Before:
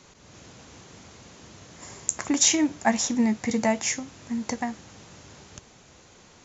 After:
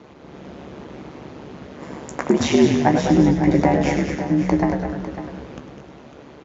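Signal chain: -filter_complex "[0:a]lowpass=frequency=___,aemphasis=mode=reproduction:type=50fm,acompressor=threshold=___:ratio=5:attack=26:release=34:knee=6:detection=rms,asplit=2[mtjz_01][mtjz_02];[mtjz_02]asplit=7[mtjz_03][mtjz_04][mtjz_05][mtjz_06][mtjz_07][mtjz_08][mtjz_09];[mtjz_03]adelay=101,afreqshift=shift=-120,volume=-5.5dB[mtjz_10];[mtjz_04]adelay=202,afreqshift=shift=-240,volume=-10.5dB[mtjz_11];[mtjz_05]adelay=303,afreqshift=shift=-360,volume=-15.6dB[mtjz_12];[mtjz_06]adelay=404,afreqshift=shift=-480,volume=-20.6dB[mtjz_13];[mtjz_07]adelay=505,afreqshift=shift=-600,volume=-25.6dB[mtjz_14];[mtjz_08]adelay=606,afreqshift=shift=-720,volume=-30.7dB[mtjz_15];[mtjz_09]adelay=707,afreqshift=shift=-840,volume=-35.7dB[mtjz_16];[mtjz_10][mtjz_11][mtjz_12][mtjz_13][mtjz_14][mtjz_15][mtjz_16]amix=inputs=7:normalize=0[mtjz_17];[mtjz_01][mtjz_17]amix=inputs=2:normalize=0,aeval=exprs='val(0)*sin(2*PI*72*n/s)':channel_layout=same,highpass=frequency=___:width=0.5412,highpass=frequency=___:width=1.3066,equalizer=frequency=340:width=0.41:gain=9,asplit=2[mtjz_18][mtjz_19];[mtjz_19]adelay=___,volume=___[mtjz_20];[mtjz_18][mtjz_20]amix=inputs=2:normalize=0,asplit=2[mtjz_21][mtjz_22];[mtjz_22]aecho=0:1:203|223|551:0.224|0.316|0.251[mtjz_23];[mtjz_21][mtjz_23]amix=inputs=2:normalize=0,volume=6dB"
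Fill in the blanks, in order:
4100, -26dB, 48, 48, 16, -12dB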